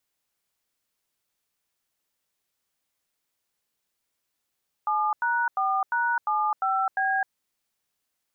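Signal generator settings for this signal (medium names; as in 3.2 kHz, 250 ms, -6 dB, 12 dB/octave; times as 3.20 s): DTMF "7#4#75B", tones 260 ms, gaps 90 ms, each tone -24.5 dBFS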